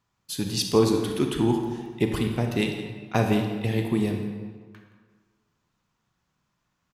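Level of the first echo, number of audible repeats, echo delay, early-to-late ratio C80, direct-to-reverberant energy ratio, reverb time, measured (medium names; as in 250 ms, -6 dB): -15.0 dB, 1, 171 ms, 6.0 dB, 3.0 dB, 1.6 s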